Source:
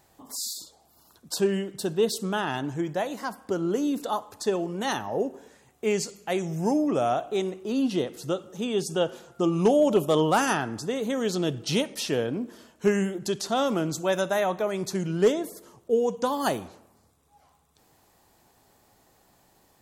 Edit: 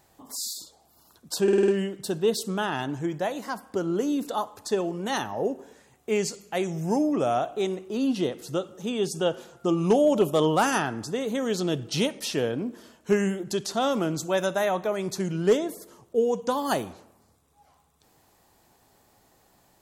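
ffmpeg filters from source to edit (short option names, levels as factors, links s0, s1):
-filter_complex "[0:a]asplit=6[s0][s1][s2][s3][s4][s5];[s0]atrim=end=1.482[s6];[s1]atrim=start=1.428:end=1.482[s7];[s2]atrim=start=1.428:end=1.482[s8];[s3]atrim=start=1.428:end=1.482[s9];[s4]atrim=start=1.428:end=1.482[s10];[s5]atrim=start=1.428[s11];[s6][s7]acrossfade=d=0.004:c1=hsin:c2=hsin[s12];[s12][s8]acrossfade=d=0.004:c1=hsin:c2=hsin[s13];[s13][s9]acrossfade=d=0.004:c1=hsin:c2=hsin[s14];[s14][s10]acrossfade=d=0.004:c1=hsin:c2=hsin[s15];[s15][s11]acrossfade=d=0.004:c1=hsin:c2=hsin"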